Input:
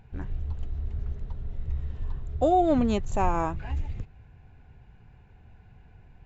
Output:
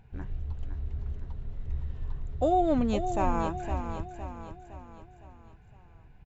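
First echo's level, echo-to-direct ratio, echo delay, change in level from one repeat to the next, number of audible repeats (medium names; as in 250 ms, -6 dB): -8.5 dB, -7.5 dB, 511 ms, -6.5 dB, 5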